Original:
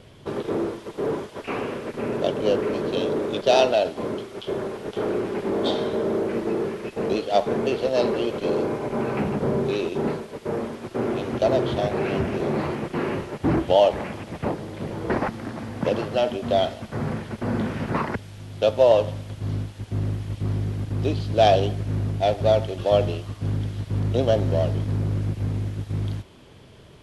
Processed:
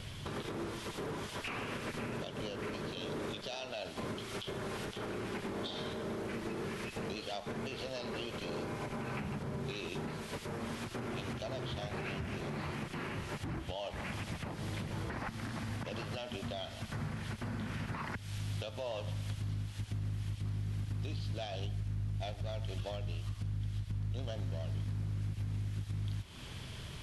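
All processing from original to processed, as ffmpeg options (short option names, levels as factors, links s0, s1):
-filter_complex "[0:a]asettb=1/sr,asplit=3[s0][s1][s2];[s0]atrim=end=21.644[s3];[s1]atrim=start=21.64:end=24.28,asetpts=PTS-STARTPTS,afade=t=in:d=0.004:c=qsin,afade=t=out:st=2.636:d=0.004:c=qsin,lowshelf=f=80:g=10,volume=2.99,asoftclip=hard,volume=0.335[s4];[s2]atrim=start=24.276[s5];[s3][s4]acrossfade=d=0.004:c1=hsin:c2=qsin[s6];[s6][s5]acrossfade=d=0.004:c1=qsin:c2=hsin,equalizer=f=440:t=o:w=2.3:g=-13.5,acompressor=threshold=0.00794:ratio=5,alimiter=level_in=4.73:limit=0.0631:level=0:latency=1:release=131,volume=0.211,volume=2.37"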